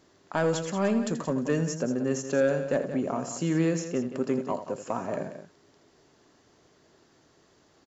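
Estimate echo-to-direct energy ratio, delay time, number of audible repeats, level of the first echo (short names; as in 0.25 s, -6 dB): -8.0 dB, 82 ms, 2, -11.0 dB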